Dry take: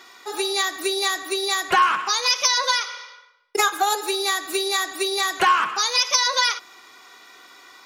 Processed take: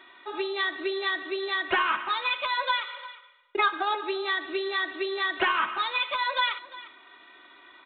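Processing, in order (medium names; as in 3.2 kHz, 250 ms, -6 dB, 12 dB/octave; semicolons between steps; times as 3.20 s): resampled via 8 kHz; comb 3.2 ms, depth 57%; on a send: delay 352 ms -18 dB; on the sum: trim -5 dB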